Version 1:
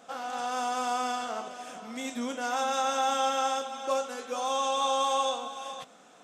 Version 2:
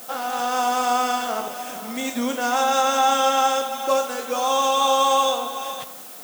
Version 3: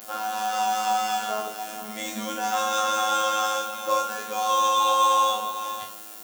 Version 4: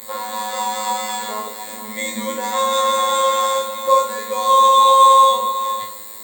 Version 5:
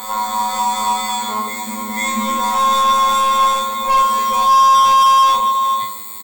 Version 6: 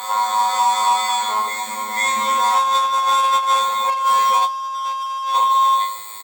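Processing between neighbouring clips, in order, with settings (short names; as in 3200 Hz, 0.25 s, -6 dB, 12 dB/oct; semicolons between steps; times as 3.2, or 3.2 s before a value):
added noise blue -49 dBFS; reverb RT60 0.85 s, pre-delay 63 ms, DRR 13.5 dB; gain +8.5 dB
robotiser 107 Hz; flutter echo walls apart 3.7 m, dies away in 0.37 s; gain -2.5 dB
ripple EQ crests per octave 1, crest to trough 18 dB; gain +3 dB
soft clip -17 dBFS, distortion -7 dB; comb 0.9 ms, depth 68%; reverse echo 0.495 s -8 dB; gain +3 dB
HPF 610 Hz 12 dB/oct; high shelf 9400 Hz -9 dB; negative-ratio compressor -16 dBFS, ratio -0.5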